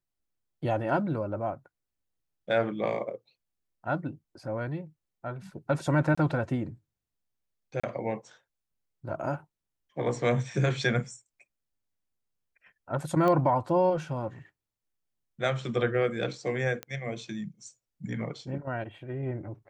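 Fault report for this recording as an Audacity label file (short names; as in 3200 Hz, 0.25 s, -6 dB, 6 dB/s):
6.150000	6.170000	gap 25 ms
7.800000	7.830000	gap 35 ms
13.280000	13.280000	pop -17 dBFS
16.830000	16.830000	pop -20 dBFS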